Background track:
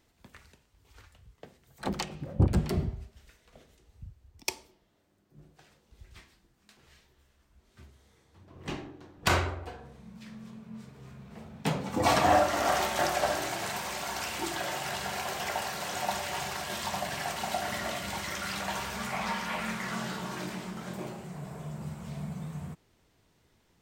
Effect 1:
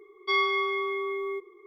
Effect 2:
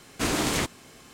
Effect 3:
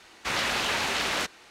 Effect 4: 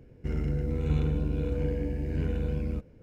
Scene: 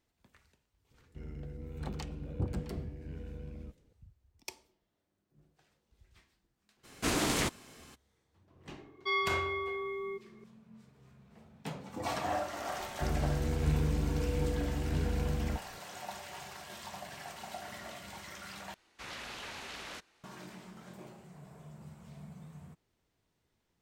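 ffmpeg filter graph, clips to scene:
ffmpeg -i bed.wav -i cue0.wav -i cue1.wav -i cue2.wav -i cue3.wav -filter_complex "[4:a]asplit=2[link_01][link_02];[0:a]volume=-11.5dB[link_03];[3:a]lowshelf=frequency=140:gain=6[link_04];[link_03]asplit=2[link_05][link_06];[link_05]atrim=end=18.744[link_07];[link_04]atrim=end=1.5,asetpts=PTS-STARTPTS,volume=-17dB[link_08];[link_06]atrim=start=20.236[link_09];[link_01]atrim=end=3.02,asetpts=PTS-STARTPTS,volume=-14.5dB,afade=type=in:duration=0.004:curve=hsin,afade=type=out:start_time=3.016:duration=0.004:curve=hsin,adelay=910[link_10];[2:a]atrim=end=1.13,asetpts=PTS-STARTPTS,volume=-4.5dB,afade=type=in:duration=0.02,afade=type=out:start_time=1.11:duration=0.02,adelay=6830[link_11];[1:a]atrim=end=1.66,asetpts=PTS-STARTPTS,volume=-6.5dB,afade=type=in:duration=0.004:curve=hsin,afade=type=out:start_time=1.656:duration=0.004:curve=hsin,adelay=8780[link_12];[link_02]atrim=end=3.02,asetpts=PTS-STARTPTS,volume=-3dB,afade=type=in:duration=0.004:curve=hsin,afade=type=out:start_time=3.016:duration=0.004:curve=hsin,adelay=12770[link_13];[link_07][link_08]acrossfade=duration=0.004:curve1=hsin:curve2=hsin[link_14];[link_14][link_09]acrossfade=duration=0.004:curve1=hsin:curve2=hsin[link_15];[link_15][link_10][link_11][link_12][link_13]amix=inputs=5:normalize=0" out.wav

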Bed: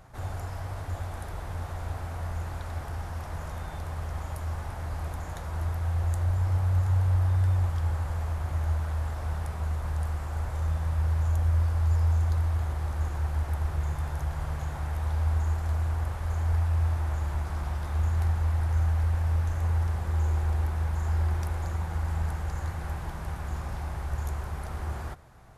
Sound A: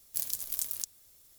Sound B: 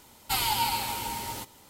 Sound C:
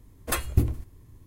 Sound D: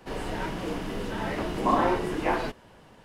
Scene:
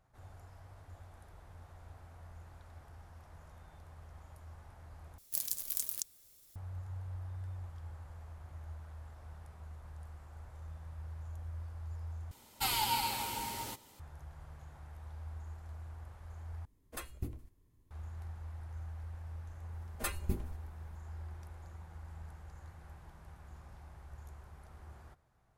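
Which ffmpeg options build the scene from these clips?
ffmpeg -i bed.wav -i cue0.wav -i cue1.wav -i cue2.wav -filter_complex "[3:a]asplit=2[link_01][link_02];[0:a]volume=-19dB[link_03];[link_01]equalizer=frequency=100:width_type=o:width=0.77:gain=-4[link_04];[link_02]aecho=1:1:5:0.88[link_05];[link_03]asplit=4[link_06][link_07][link_08][link_09];[link_06]atrim=end=5.184[link_10];[1:a]atrim=end=1.38,asetpts=PTS-STARTPTS,volume=-2.5dB[link_11];[link_07]atrim=start=6.556:end=12.314[link_12];[2:a]atrim=end=1.69,asetpts=PTS-STARTPTS,volume=-5.5dB[link_13];[link_08]atrim=start=13.996:end=16.654[link_14];[link_04]atrim=end=1.26,asetpts=PTS-STARTPTS,volume=-16.5dB[link_15];[link_09]atrim=start=17.906[link_16];[link_05]atrim=end=1.26,asetpts=PTS-STARTPTS,volume=-12dB,afade=type=in:duration=0.004:curve=hsin,afade=type=out:start_time=1.256:duration=0.004:curve=hsin,adelay=869652S[link_17];[link_10][link_11]acrossfade=duration=0.004:curve1=hsin:curve2=hsin[link_18];[link_18][link_12]acrossfade=duration=0.004:curve1=hsin:curve2=hsin[link_19];[link_19][link_13]acrossfade=duration=0.004:curve1=hsin:curve2=hsin[link_20];[link_20][link_14]acrossfade=duration=0.004:curve1=hsin:curve2=hsin[link_21];[link_21][link_15]acrossfade=duration=0.004:curve1=hsin:curve2=hsin[link_22];[link_22][link_16]acrossfade=duration=0.004:curve1=hsin:curve2=hsin[link_23];[link_23][link_17]amix=inputs=2:normalize=0" out.wav

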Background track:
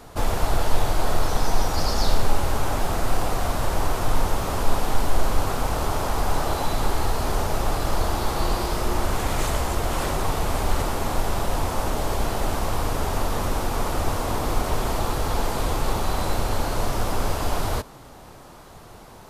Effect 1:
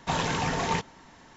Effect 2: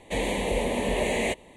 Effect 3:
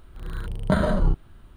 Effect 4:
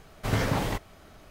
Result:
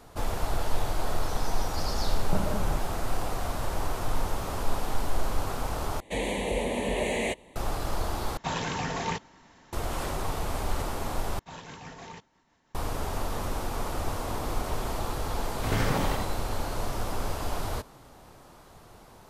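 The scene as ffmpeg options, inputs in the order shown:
ffmpeg -i bed.wav -i cue0.wav -i cue1.wav -i cue2.wav -i cue3.wav -filter_complex "[1:a]asplit=2[link_01][link_02];[0:a]volume=-7dB[link_03];[3:a]lowpass=1000[link_04];[link_02]tremolo=f=6.1:d=0.34[link_05];[4:a]aecho=1:1:83:0.668[link_06];[link_03]asplit=4[link_07][link_08][link_09][link_10];[link_07]atrim=end=6.004[link_11];[2:a]atrim=end=1.56,asetpts=PTS-STARTPTS,volume=-2.5dB[link_12];[link_08]atrim=start=7.556:end=8.374[link_13];[link_01]atrim=end=1.36,asetpts=PTS-STARTPTS,volume=-3.5dB[link_14];[link_09]atrim=start=9.726:end=11.394[link_15];[link_05]atrim=end=1.36,asetpts=PTS-STARTPTS,volume=-14.5dB[link_16];[link_10]atrim=start=12.746[link_17];[link_04]atrim=end=1.56,asetpts=PTS-STARTPTS,volume=-9dB,afade=type=in:duration=0.004:curve=hsin,afade=type=out:start_time=1.556:duration=0.004:curve=hsin,adelay=1630[link_18];[link_06]atrim=end=1.3,asetpts=PTS-STARTPTS,volume=-2.5dB,afade=type=in:duration=0.004:curve=hsin,afade=type=out:start_time=1.296:duration=0.004:curve=hsin,adelay=15390[link_19];[link_11][link_12]acrossfade=duration=0.004:curve1=hsin:curve2=hsin[link_20];[link_20][link_13]acrossfade=duration=0.004:curve1=hsin:curve2=hsin[link_21];[link_21][link_14]acrossfade=duration=0.004:curve1=hsin:curve2=hsin[link_22];[link_22][link_15]acrossfade=duration=0.004:curve1=hsin:curve2=hsin[link_23];[link_23][link_16]acrossfade=duration=0.004:curve1=hsin:curve2=hsin[link_24];[link_24][link_17]acrossfade=duration=0.004:curve1=hsin:curve2=hsin[link_25];[link_25][link_18][link_19]amix=inputs=3:normalize=0" out.wav

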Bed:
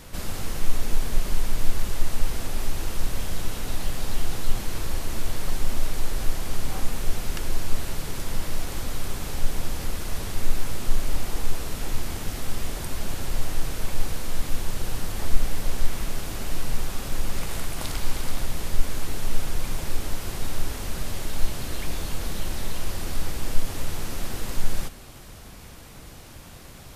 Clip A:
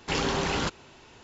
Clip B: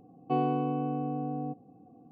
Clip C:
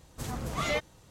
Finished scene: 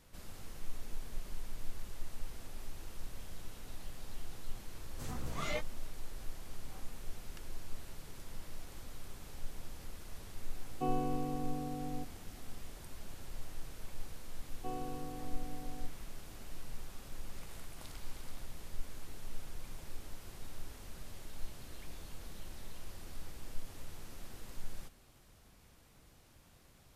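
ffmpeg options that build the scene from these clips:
ffmpeg -i bed.wav -i cue0.wav -i cue1.wav -i cue2.wav -filter_complex "[2:a]asplit=2[link_01][link_02];[0:a]volume=-18.5dB[link_03];[3:a]flanger=delay=15.5:depth=4.3:speed=2.4[link_04];[link_02]bandreject=frequency=50:width_type=h:width=6,bandreject=frequency=100:width_type=h:width=6,bandreject=frequency=150:width_type=h:width=6,bandreject=frequency=200:width_type=h:width=6,bandreject=frequency=250:width_type=h:width=6,bandreject=frequency=300:width_type=h:width=6,bandreject=frequency=350:width_type=h:width=6,bandreject=frequency=400:width_type=h:width=6[link_05];[link_04]atrim=end=1.1,asetpts=PTS-STARTPTS,volume=-5.5dB,afade=type=in:duration=0.004:curve=hsin,afade=type=out:start_time=1.096:duration=0.004:curve=hsin,adelay=4800[link_06];[link_01]atrim=end=2.11,asetpts=PTS-STARTPTS,volume=-7.5dB,afade=type=in:duration=0.004:curve=hsin,afade=type=out:start_time=2.106:duration=0.004:curve=hsin,adelay=10510[link_07];[link_05]atrim=end=2.11,asetpts=PTS-STARTPTS,volume=-14dB,afade=type=in:duration=0.004:curve=hsin,afade=type=out:start_time=2.106:duration=0.004:curve=hsin,adelay=14340[link_08];[link_03][link_06][link_07][link_08]amix=inputs=4:normalize=0" out.wav

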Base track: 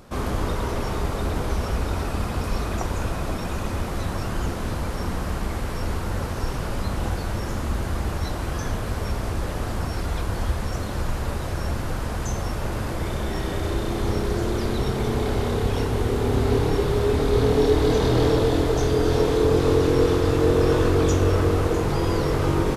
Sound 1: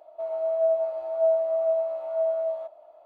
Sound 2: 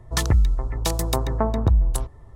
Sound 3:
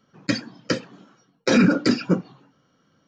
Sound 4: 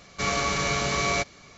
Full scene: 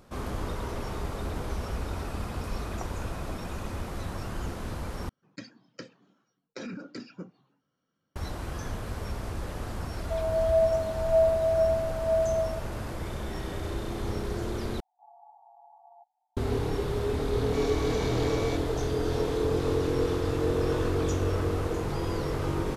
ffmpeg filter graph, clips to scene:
ffmpeg -i bed.wav -i cue0.wav -i cue1.wav -i cue2.wav -i cue3.wav -filter_complex "[4:a]asplit=2[link_01][link_02];[0:a]volume=-8dB[link_03];[3:a]acompressor=threshold=-20dB:ratio=3:attack=18:release=350:knee=6:detection=rms[link_04];[link_01]asuperpass=centerf=810:order=8:qfactor=4.5[link_05];[link_03]asplit=3[link_06][link_07][link_08];[link_06]atrim=end=5.094[link_09];[link_04]atrim=end=3.07,asetpts=PTS-STARTPTS,volume=-17dB[link_10];[link_07]atrim=start=8.156:end=14.804[link_11];[link_05]atrim=end=1.57,asetpts=PTS-STARTPTS,volume=-11.5dB[link_12];[link_08]atrim=start=16.366[link_13];[1:a]atrim=end=3.05,asetpts=PTS-STARTPTS,afade=type=in:duration=0.004:curve=hsin,afade=type=out:start_time=3.046:duration=0.004:curve=hsin,adelay=9920[link_14];[link_02]atrim=end=1.57,asetpts=PTS-STARTPTS,volume=-15.5dB,afade=type=in:duration=0.004:curve=hsin,afade=type=out:start_time=1.566:duration=0.004:curve=hsin,adelay=17340[link_15];[link_09][link_10]acrossfade=duration=0.004:curve1=hsin:curve2=hsin[link_16];[link_16][link_11]acrossfade=duration=0.004:curve1=hsin:curve2=hsin[link_17];[link_17][link_12]acrossfade=duration=0.004:curve1=hsin:curve2=hsin[link_18];[link_18][link_13]acrossfade=duration=0.004:curve1=hsin:curve2=hsin[link_19];[link_19][link_14][link_15]amix=inputs=3:normalize=0" out.wav

